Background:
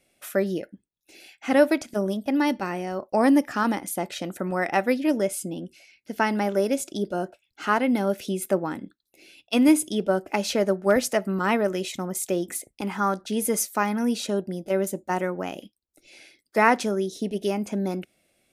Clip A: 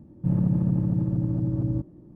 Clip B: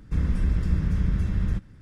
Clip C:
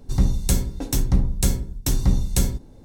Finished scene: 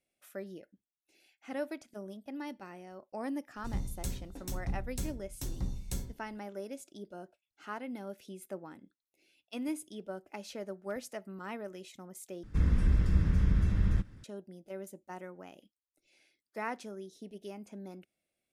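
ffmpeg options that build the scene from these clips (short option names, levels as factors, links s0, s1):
-filter_complex "[0:a]volume=0.119[s0];[2:a]equalizer=f=160:t=o:w=0.39:g=-3.5[s1];[s0]asplit=2[s2][s3];[s2]atrim=end=12.434[s4];[s1]atrim=end=1.81,asetpts=PTS-STARTPTS,volume=0.75[s5];[s3]atrim=start=14.236[s6];[3:a]atrim=end=2.84,asetpts=PTS-STARTPTS,volume=0.141,afade=t=in:d=0.004:c=hsin,afade=t=out:st=2.836:d=0.004:c=hsin,adelay=3550[s7];[s4][s5]acrossfade=d=0.004:c1=hsin:c2=hsin[s8];[s8][s6]acrossfade=d=0.004:c1=hsin:c2=hsin[s9];[s9][s7]amix=inputs=2:normalize=0"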